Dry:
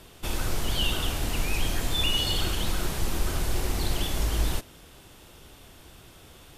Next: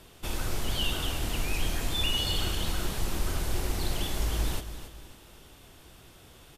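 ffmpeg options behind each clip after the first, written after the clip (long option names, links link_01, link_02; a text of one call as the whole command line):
ffmpeg -i in.wav -af "aecho=1:1:276|552|828|1104:0.266|0.0984|0.0364|0.0135,volume=-3dB" out.wav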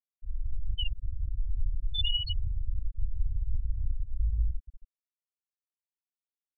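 ffmpeg -i in.wav -af "equalizer=frequency=9000:width_type=o:width=0.61:gain=-5,afftfilt=real='re*gte(hypot(re,im),0.224)':imag='im*gte(hypot(re,im),0.224)':win_size=1024:overlap=0.75,volume=2dB" out.wav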